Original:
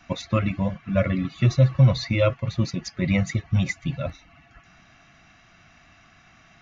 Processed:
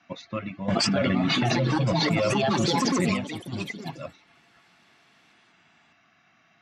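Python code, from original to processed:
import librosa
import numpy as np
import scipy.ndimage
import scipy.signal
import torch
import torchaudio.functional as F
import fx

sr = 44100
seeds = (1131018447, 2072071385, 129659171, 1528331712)

y = fx.bandpass_edges(x, sr, low_hz=180.0, high_hz=5300.0)
y = fx.echo_pitch(y, sr, ms=675, semitones=4, count=3, db_per_echo=-3.0)
y = fx.env_flatten(y, sr, amount_pct=100, at=(0.68, 3.14))
y = y * librosa.db_to_amplitude(-7.0)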